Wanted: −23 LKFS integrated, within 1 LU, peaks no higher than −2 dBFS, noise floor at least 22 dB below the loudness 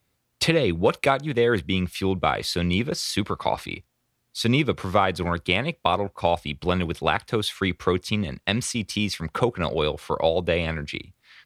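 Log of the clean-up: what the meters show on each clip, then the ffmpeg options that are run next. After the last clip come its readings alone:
integrated loudness −24.5 LKFS; sample peak −4.0 dBFS; target loudness −23.0 LKFS
→ -af "volume=1.5dB"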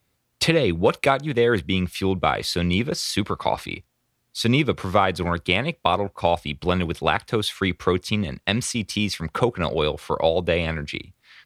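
integrated loudness −23.0 LKFS; sample peak −2.5 dBFS; background noise floor −72 dBFS

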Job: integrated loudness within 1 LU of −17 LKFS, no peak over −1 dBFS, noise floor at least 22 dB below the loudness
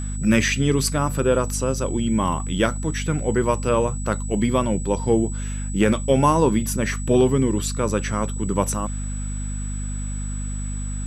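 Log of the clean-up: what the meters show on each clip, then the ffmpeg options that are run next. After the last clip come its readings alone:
mains hum 50 Hz; hum harmonics up to 250 Hz; level of the hum −25 dBFS; interfering tone 7,900 Hz; level of the tone −36 dBFS; integrated loudness −22.5 LKFS; sample peak −4.5 dBFS; target loudness −17.0 LKFS
→ -af "bandreject=frequency=50:width_type=h:width=6,bandreject=frequency=100:width_type=h:width=6,bandreject=frequency=150:width_type=h:width=6,bandreject=frequency=200:width_type=h:width=6,bandreject=frequency=250:width_type=h:width=6"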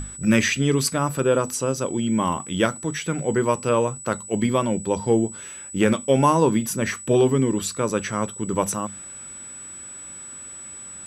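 mains hum none found; interfering tone 7,900 Hz; level of the tone −36 dBFS
→ -af "bandreject=frequency=7900:width=30"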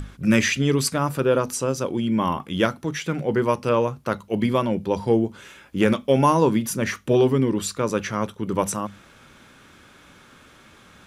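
interfering tone none found; integrated loudness −22.5 LKFS; sample peak −4.5 dBFS; target loudness −17.0 LKFS
→ -af "volume=5.5dB,alimiter=limit=-1dB:level=0:latency=1"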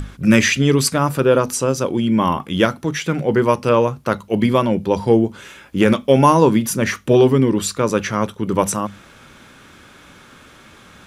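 integrated loudness −17.0 LKFS; sample peak −1.0 dBFS; background noise floor −46 dBFS

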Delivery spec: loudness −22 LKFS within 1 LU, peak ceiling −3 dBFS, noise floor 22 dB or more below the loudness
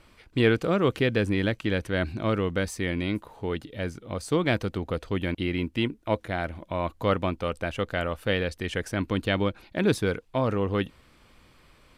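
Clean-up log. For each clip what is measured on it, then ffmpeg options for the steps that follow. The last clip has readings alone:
integrated loudness −28.0 LKFS; sample peak −10.0 dBFS; target loudness −22.0 LKFS
→ -af "volume=6dB"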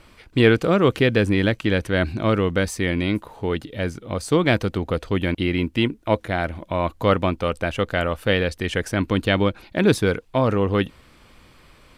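integrated loudness −22.0 LKFS; sample peak −4.0 dBFS; background noise floor −52 dBFS

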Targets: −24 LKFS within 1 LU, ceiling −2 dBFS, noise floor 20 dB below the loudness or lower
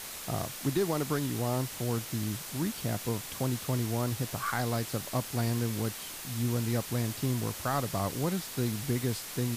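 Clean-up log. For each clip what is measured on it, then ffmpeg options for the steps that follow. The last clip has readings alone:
background noise floor −42 dBFS; target noise floor −52 dBFS; integrated loudness −32.0 LKFS; sample peak −17.5 dBFS; target loudness −24.0 LKFS
→ -af "afftdn=noise_reduction=10:noise_floor=-42"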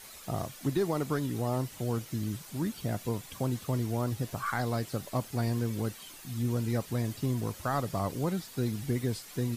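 background noise floor −49 dBFS; target noise floor −53 dBFS
→ -af "afftdn=noise_reduction=6:noise_floor=-49"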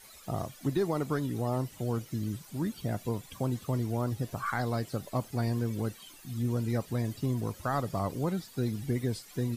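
background noise floor −53 dBFS; integrated loudness −33.0 LKFS; sample peak −18.5 dBFS; target loudness −24.0 LKFS
→ -af "volume=9dB"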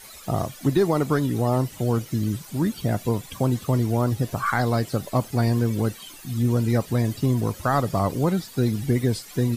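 integrated loudness −24.0 LKFS; sample peak −9.5 dBFS; background noise floor −44 dBFS

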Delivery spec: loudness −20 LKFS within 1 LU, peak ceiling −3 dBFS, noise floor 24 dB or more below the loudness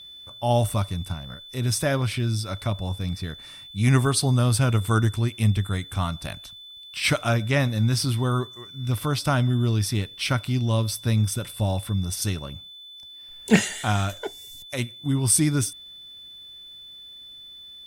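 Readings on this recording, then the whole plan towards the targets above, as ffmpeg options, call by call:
interfering tone 3,500 Hz; level of the tone −41 dBFS; integrated loudness −24.5 LKFS; sample peak −3.5 dBFS; target loudness −20.0 LKFS
→ -af "bandreject=frequency=3500:width=30"
-af "volume=4.5dB,alimiter=limit=-3dB:level=0:latency=1"

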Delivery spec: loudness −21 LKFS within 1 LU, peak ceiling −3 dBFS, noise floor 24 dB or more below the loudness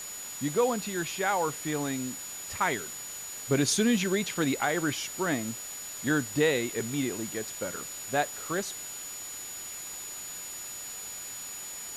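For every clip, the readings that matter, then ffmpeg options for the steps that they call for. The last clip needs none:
interfering tone 6,900 Hz; level of the tone −39 dBFS; background noise floor −40 dBFS; target noise floor −55 dBFS; integrated loudness −30.5 LKFS; sample peak −14.0 dBFS; target loudness −21.0 LKFS
→ -af "bandreject=frequency=6900:width=30"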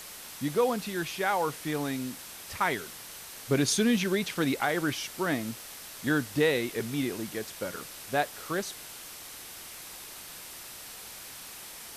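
interfering tone none found; background noise floor −45 dBFS; target noise floor −54 dBFS
→ -af "afftdn=noise_reduction=9:noise_floor=-45"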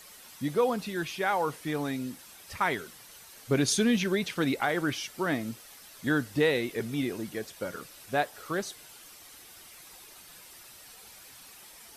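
background noise floor −51 dBFS; target noise floor −54 dBFS
→ -af "afftdn=noise_reduction=6:noise_floor=-51"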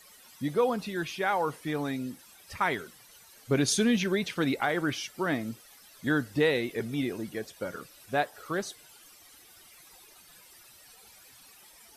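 background noise floor −55 dBFS; integrated loudness −30.0 LKFS; sample peak −15.0 dBFS; target loudness −21.0 LKFS
→ -af "volume=9dB"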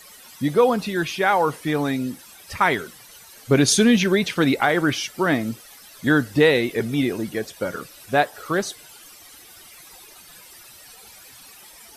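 integrated loudness −21.0 LKFS; sample peak −6.0 dBFS; background noise floor −46 dBFS

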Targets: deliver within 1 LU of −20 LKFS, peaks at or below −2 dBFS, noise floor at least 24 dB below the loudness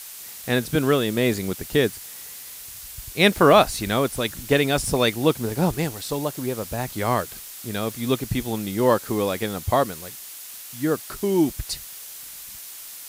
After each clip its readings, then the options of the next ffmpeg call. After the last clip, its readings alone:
background noise floor −39 dBFS; target noise floor −47 dBFS; integrated loudness −23.0 LKFS; sample peak −3.0 dBFS; target loudness −20.0 LKFS
→ -af "afftdn=noise_reduction=8:noise_floor=-39"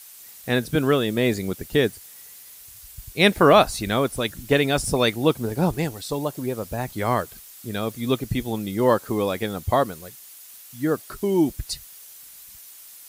background noise floor −45 dBFS; target noise floor −47 dBFS
→ -af "afftdn=noise_reduction=6:noise_floor=-45"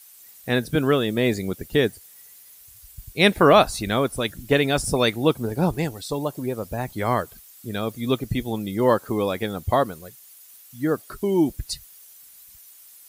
background noise floor −49 dBFS; integrated loudness −23.0 LKFS; sample peak −3.0 dBFS; target loudness −20.0 LKFS
→ -af "volume=3dB,alimiter=limit=-2dB:level=0:latency=1"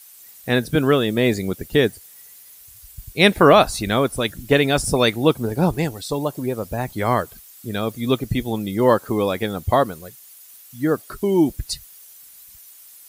integrated loudness −20.0 LKFS; sample peak −2.0 dBFS; background noise floor −46 dBFS

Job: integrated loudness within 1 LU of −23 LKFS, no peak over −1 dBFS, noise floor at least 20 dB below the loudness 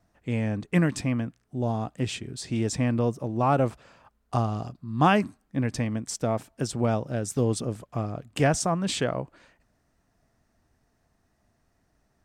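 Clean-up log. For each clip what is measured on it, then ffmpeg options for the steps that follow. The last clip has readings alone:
integrated loudness −27.5 LKFS; sample peak −9.0 dBFS; target loudness −23.0 LKFS
→ -af "volume=4.5dB"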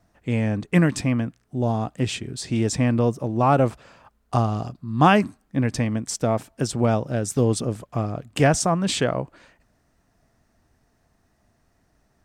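integrated loudness −23.0 LKFS; sample peak −4.5 dBFS; background noise floor −66 dBFS

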